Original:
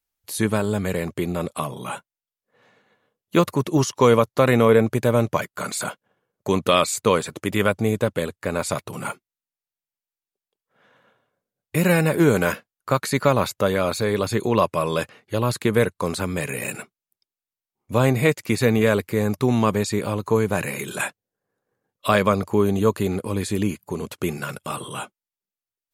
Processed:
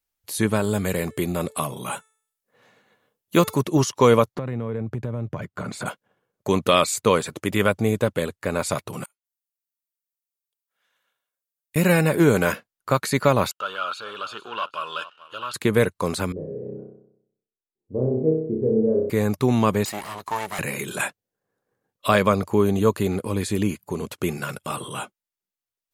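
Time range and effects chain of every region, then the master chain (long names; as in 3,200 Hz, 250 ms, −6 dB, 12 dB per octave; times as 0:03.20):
0:00.62–0:03.61: high-shelf EQ 6,700 Hz +8.5 dB + hum removal 438.6 Hz, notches 23
0:04.35–0:05.86: high-pass filter 80 Hz 24 dB per octave + RIAA equalisation playback + downward compressor, threshold −26 dBFS
0:09.04–0:11.76: first-order pre-emphasis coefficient 0.97 + gate with flip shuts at −29 dBFS, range −30 dB
0:13.51–0:15.54: single-tap delay 439 ms −18 dB + leveller curve on the samples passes 2 + pair of resonant band-passes 2,000 Hz, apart 1.1 octaves
0:16.32–0:19.10: transistor ladder low-pass 480 Hz, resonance 60% + flutter between parallel walls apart 5.4 metres, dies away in 0.74 s
0:19.85–0:20.59: lower of the sound and its delayed copy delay 0.99 ms + high-pass filter 600 Hz 6 dB per octave
whole clip: no processing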